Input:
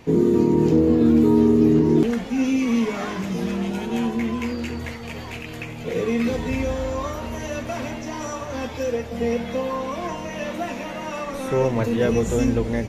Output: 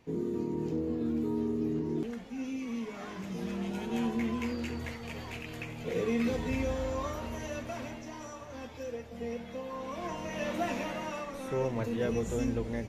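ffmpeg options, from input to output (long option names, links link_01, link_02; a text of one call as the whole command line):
ffmpeg -i in.wav -af "volume=3.5dB,afade=type=in:start_time=2.87:duration=1.25:silence=0.375837,afade=type=out:start_time=7.17:duration=1.16:silence=0.446684,afade=type=in:start_time=9.67:duration=1.09:silence=0.281838,afade=type=out:start_time=10.76:duration=0.55:silence=0.421697" out.wav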